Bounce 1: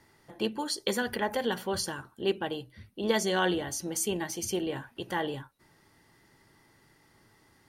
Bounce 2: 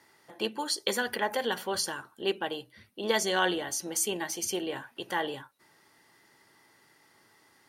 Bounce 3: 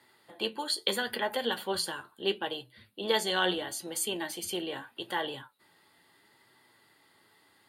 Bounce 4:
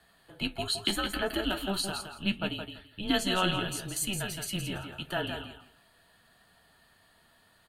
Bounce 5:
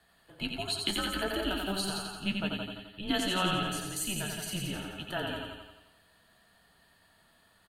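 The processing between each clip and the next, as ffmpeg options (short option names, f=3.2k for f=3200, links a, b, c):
-af "highpass=f=490:p=1,volume=2.5dB"
-filter_complex "[0:a]flanger=delay=7.9:depth=3.8:regen=61:speed=0.76:shape=sinusoidal,acrossover=split=320|5000[a][b][c];[b]aexciter=amount=1.9:drive=4.9:freq=3.2k[d];[a][d][c]amix=inputs=3:normalize=0,volume=2.5dB"
-af "aecho=1:1:167|334|501:0.447|0.0893|0.0179,afreqshift=-190"
-af "aecho=1:1:88|176|264|352|440|528|616:0.596|0.322|0.174|0.0938|0.0506|0.0274|0.0148,volume=-3dB"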